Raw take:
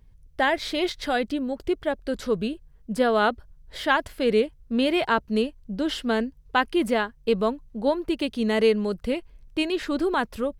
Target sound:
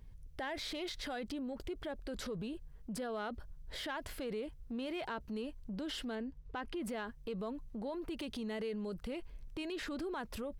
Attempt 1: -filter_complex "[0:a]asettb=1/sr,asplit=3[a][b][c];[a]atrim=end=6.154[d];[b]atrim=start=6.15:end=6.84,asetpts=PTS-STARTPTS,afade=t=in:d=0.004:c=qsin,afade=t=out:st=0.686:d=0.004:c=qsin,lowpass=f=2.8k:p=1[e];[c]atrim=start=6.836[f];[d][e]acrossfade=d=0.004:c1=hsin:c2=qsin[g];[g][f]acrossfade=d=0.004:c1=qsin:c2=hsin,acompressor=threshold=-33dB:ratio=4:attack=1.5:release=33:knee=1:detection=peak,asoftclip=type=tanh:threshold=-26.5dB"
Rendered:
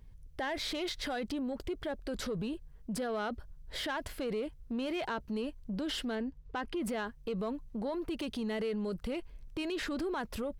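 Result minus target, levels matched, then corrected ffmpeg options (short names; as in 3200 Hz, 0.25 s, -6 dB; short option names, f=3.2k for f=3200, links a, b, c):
compressor: peak gain reduction -5.5 dB
-filter_complex "[0:a]asettb=1/sr,asplit=3[a][b][c];[a]atrim=end=6.154[d];[b]atrim=start=6.15:end=6.84,asetpts=PTS-STARTPTS,afade=t=in:d=0.004:c=qsin,afade=t=out:st=0.686:d=0.004:c=qsin,lowpass=f=2.8k:p=1[e];[c]atrim=start=6.836[f];[d][e]acrossfade=d=0.004:c1=hsin:c2=qsin[g];[g][f]acrossfade=d=0.004:c1=qsin:c2=hsin,acompressor=threshold=-40.5dB:ratio=4:attack=1.5:release=33:knee=1:detection=peak,asoftclip=type=tanh:threshold=-26.5dB"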